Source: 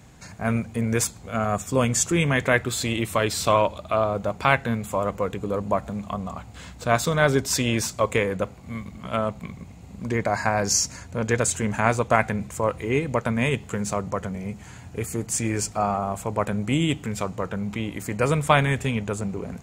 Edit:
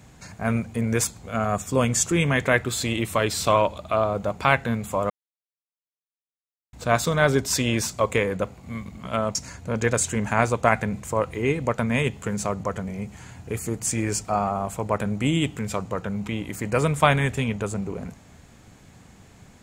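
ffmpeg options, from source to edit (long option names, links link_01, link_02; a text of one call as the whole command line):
ffmpeg -i in.wav -filter_complex "[0:a]asplit=4[link_01][link_02][link_03][link_04];[link_01]atrim=end=5.1,asetpts=PTS-STARTPTS,afade=type=out:start_time=5.096:duration=0.004:curve=hsin[link_05];[link_02]atrim=start=5.1:end=6.73,asetpts=PTS-STARTPTS,volume=0[link_06];[link_03]atrim=start=6.73:end=9.352,asetpts=PTS-STARTPTS,afade=type=in:duration=0.004:curve=hsin[link_07];[link_04]atrim=start=10.818[link_08];[link_05][link_06][link_07]concat=n=3:v=0:a=1[link_09];[link_09][link_08]acrossfade=duration=0.004:curve1=hsin:curve2=hsin" out.wav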